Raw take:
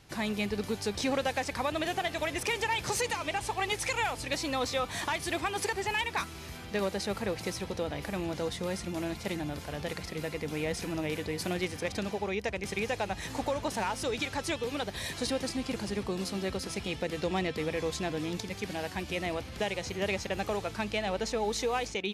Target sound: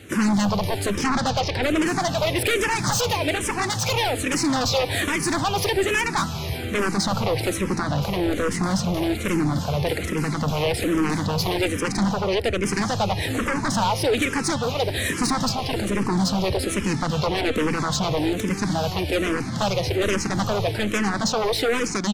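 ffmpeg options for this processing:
-filter_complex "[0:a]highpass=f=86:w=0.5412,highpass=f=86:w=1.3066,lowshelf=f=380:g=8,asettb=1/sr,asplit=3[s0][s1][s2];[s0]atrim=end=0.974[s3];[s1]atrim=start=0.97:end=1.63,asetpts=PTS-STARTPTS,afade=t=in:d=0.004:c=qsin,afade=t=out:st=0.656:d=0.004:c=qsin,lowpass=f=6000:w=0.5412,lowpass=f=6000:w=1.3066[s4];[s2]atrim=start=1.626[s5];[s3][s4]acrossfade=d=0.004:c1=hsin:c2=qsin[s6];[s6][s5]acrossfade=d=0.004:c1=qsin:c2=hsin,aeval=exprs='0.168*sin(PI/2*3.55*val(0)/0.168)':c=same,aecho=1:1:178|356|534|712:0.0794|0.0469|0.0277|0.0163,asplit=2[s7][s8];[s8]afreqshift=-1.2[s9];[s7][s9]amix=inputs=2:normalize=1"

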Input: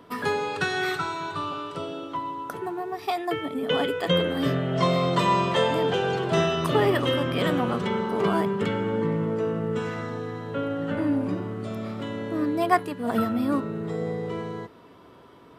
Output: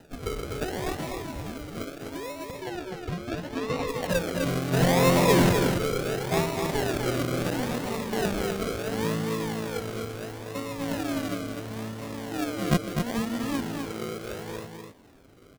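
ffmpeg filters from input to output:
-filter_complex "[0:a]asettb=1/sr,asplit=3[s0][s1][s2];[s0]atrim=end=4.734[s3];[s1]atrim=start=4.73:end=5.53,asetpts=PTS-STARTPTS,afade=t=in:d=0.004:c=qsin,afade=t=out:st=0.796:d=0.004:c=qsin,aeval=exprs='0.376*(cos(1*acos(clip(val(0)/0.376,-1,1)))-cos(1*PI/2))+0.133*(cos(5*acos(clip(val(0)/0.376,-1,1)))-cos(5*PI/2))':c=same[s4];[s2]atrim=start=5.526[s5];[s3][s4]acrossfade=d=0.004:c1=hsin:c2=qsin[s6];[s6][s5]acrossfade=d=0.004:c1=qsin:c2=hsin,aphaser=in_gain=1:out_gain=1:delay=4.1:decay=0.3:speed=1.1:type=sinusoidal,acrusher=samples=39:mix=1:aa=0.000001:lfo=1:lforange=23.4:lforate=0.73,asettb=1/sr,asplit=3[s7][s8][s9];[s7]atrim=end=2.534[s10];[s8]atrim=start=2.53:end=3.88,asetpts=PTS-STARTPTS,afade=t=in:d=0.004:c=qsin,afade=t=out:st=1.346:d=0.004:c=qsin,acrossover=split=5900[s11][s12];[s12]acompressor=threshold=0.00501:ratio=4:attack=1:release=60[s13];[s11][s13]amix=inputs=2:normalize=0[s14];[s9]atrim=start=3.876[s15];[s10][s14]acrossfade=d=0.004:c1=hsin:c2=qsin[s16];[s16][s15]acrossfade=d=0.004:c1=qsin:c2=hsin,asplit=2[s17][s18];[s18]aecho=0:1:252:0.562[s19];[s17][s19]amix=inputs=2:normalize=0,volume=0.501"

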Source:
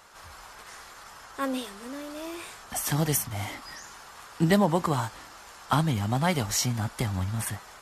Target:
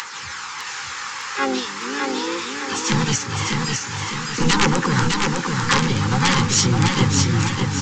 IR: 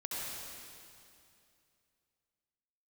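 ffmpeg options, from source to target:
-filter_complex "[0:a]highpass=f=92:w=0.5412,highpass=f=92:w=1.3066,highshelf=f=4200:g=3.5,acrossover=split=790[s0][s1];[s0]aeval=exprs='0.0631*(abs(mod(val(0)/0.0631+3,4)-2)-1)':c=same[s2];[s1]acompressor=mode=upward:threshold=0.0282:ratio=2.5[s3];[s2][s3]amix=inputs=2:normalize=0,asplit=4[s4][s5][s6][s7];[s5]asetrate=35002,aresample=44100,atempo=1.25992,volume=0.2[s8];[s6]asetrate=58866,aresample=44100,atempo=0.749154,volume=0.355[s9];[s7]asetrate=66075,aresample=44100,atempo=0.66742,volume=0.708[s10];[s4][s8][s9][s10]amix=inputs=4:normalize=0,aphaser=in_gain=1:out_gain=1:delay=1.9:decay=0.31:speed=0.43:type=triangular,aresample=16000,aeval=exprs='(mod(5.31*val(0)+1,2)-1)/5.31':c=same,aresample=44100,asuperstop=centerf=650:order=8:qfactor=2.9,aecho=1:1:606|1212|1818|2424|3030|3636:0.631|0.29|0.134|0.0614|0.0283|0.013,volume=2.11"

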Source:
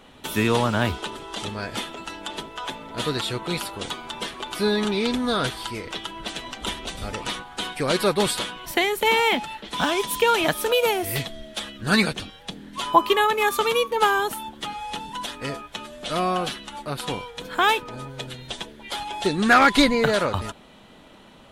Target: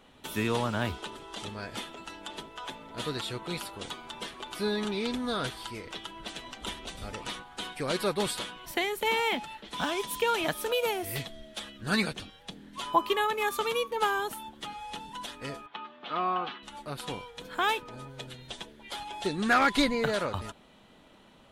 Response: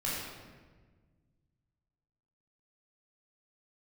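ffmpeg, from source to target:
-filter_complex "[0:a]asettb=1/sr,asplit=3[s0][s1][s2];[s0]atrim=end=15.664[s3];[s1]atrim=start=15.66:end=16.63,asetpts=PTS-STARTPTS,afade=t=in:d=0.004:c=qsin,afade=t=out:st=0.966:d=0.004:c=qsin,highpass=240,equalizer=f=580:t=q:w=4:g=-8,equalizer=f=850:t=q:w=4:g=7,equalizer=f=1200:t=q:w=4:g=7,lowpass=f=3400:w=0.5412,lowpass=f=3400:w=1.3066[s4];[s2]atrim=start=16.626[s5];[s3][s4]acrossfade=d=0.004:c1=hsin:c2=qsin[s6];[s6][s5]acrossfade=d=0.004:c1=qsin:c2=hsin,volume=0.398"

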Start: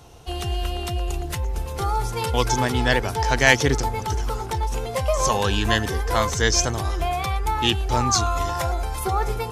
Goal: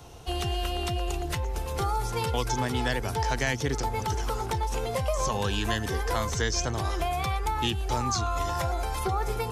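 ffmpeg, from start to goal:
-filter_complex "[0:a]acrossover=split=280|6500[s0][s1][s2];[s0]acompressor=threshold=0.0355:ratio=4[s3];[s1]acompressor=threshold=0.0398:ratio=4[s4];[s2]acompressor=threshold=0.00631:ratio=4[s5];[s3][s4][s5]amix=inputs=3:normalize=0"

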